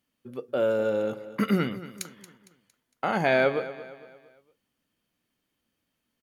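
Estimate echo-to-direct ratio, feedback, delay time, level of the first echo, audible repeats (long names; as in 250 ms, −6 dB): −14.0 dB, 42%, 229 ms, −15.0 dB, 3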